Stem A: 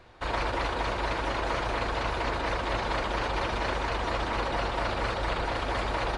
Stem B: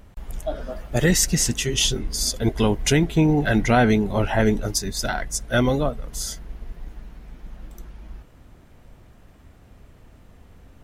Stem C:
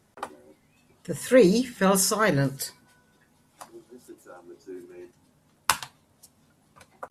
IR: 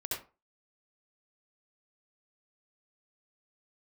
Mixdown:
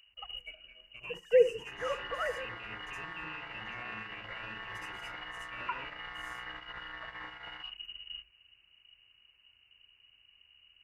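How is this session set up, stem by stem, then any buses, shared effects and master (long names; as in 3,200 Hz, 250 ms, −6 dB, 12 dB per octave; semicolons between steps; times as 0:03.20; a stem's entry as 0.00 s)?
0.0 dB, 1.45 s, bus A, send −15 dB, channel vocoder with a chord as carrier bare fifth, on B2; inverse Chebyshev high-pass filter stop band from 230 Hz, stop band 70 dB
−6.0 dB, 0.00 s, bus A, send −22 dB, parametric band 3,700 Hz −14.5 dB 0.74 octaves; downward compressor 6 to 1, threshold −25 dBFS, peak gain reduction 11.5 dB; automatic ducking −9 dB, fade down 0.40 s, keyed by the third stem
−8.5 dB, 0.00 s, no bus, send −15.5 dB, three sine waves on the formant tracks; elliptic high-pass filter 480 Hz
bus A: 0.0 dB, voice inversion scrambler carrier 2,900 Hz; brickwall limiter −34 dBFS, peak gain reduction 9.5 dB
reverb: on, RT60 0.35 s, pre-delay 62 ms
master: noise gate −42 dBFS, range −11 dB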